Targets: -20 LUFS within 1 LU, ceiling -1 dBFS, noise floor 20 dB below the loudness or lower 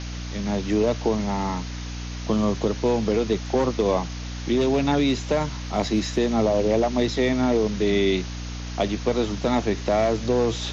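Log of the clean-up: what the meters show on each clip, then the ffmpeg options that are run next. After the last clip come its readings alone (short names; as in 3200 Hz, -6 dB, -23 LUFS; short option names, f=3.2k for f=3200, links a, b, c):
hum 60 Hz; harmonics up to 300 Hz; hum level -30 dBFS; noise floor -33 dBFS; noise floor target -44 dBFS; loudness -23.5 LUFS; peak -9.0 dBFS; loudness target -20.0 LUFS
-> -af "bandreject=f=60:t=h:w=4,bandreject=f=120:t=h:w=4,bandreject=f=180:t=h:w=4,bandreject=f=240:t=h:w=4,bandreject=f=300:t=h:w=4"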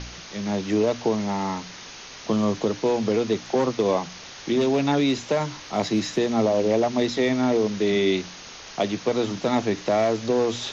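hum none; noise floor -41 dBFS; noise floor target -44 dBFS
-> -af "afftdn=nr=6:nf=-41"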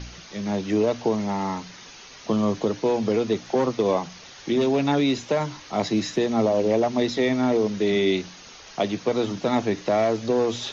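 noise floor -45 dBFS; loudness -24.0 LUFS; peak -9.0 dBFS; loudness target -20.0 LUFS
-> -af "volume=4dB"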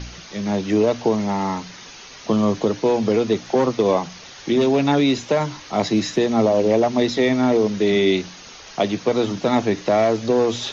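loudness -20.0 LUFS; peak -5.0 dBFS; noise floor -41 dBFS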